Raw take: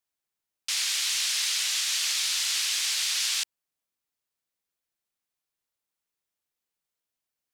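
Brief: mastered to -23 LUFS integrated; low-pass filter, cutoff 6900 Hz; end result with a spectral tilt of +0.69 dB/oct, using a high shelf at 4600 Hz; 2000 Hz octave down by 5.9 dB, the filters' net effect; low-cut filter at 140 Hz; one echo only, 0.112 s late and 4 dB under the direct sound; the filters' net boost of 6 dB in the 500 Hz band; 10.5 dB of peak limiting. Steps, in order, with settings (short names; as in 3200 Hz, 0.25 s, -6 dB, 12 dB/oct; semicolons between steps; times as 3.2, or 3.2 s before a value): HPF 140 Hz; LPF 6900 Hz; bell 500 Hz +8.5 dB; bell 2000 Hz -7 dB; high shelf 4600 Hz -4.5 dB; limiter -29.5 dBFS; echo 0.112 s -4 dB; gain +11.5 dB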